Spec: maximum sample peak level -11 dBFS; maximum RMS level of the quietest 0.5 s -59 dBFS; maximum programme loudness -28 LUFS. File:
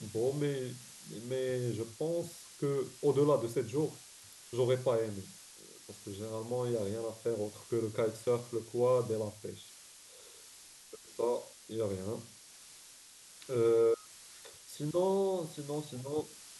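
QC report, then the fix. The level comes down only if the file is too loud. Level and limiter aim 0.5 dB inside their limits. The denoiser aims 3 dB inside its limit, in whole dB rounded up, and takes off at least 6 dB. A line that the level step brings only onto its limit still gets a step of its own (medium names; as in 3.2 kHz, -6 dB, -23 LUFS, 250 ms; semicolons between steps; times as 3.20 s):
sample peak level -18.0 dBFS: pass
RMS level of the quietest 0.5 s -56 dBFS: fail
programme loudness -34.5 LUFS: pass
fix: noise reduction 6 dB, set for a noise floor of -56 dBFS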